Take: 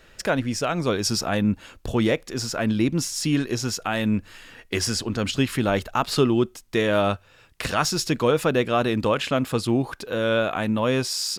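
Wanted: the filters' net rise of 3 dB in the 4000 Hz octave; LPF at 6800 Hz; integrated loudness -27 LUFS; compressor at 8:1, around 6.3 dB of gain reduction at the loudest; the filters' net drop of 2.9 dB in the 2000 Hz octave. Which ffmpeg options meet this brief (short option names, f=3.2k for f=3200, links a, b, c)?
-af "lowpass=6.8k,equalizer=f=2k:t=o:g=-6,equalizer=f=4k:t=o:g=6.5,acompressor=threshold=-22dB:ratio=8,volume=0.5dB"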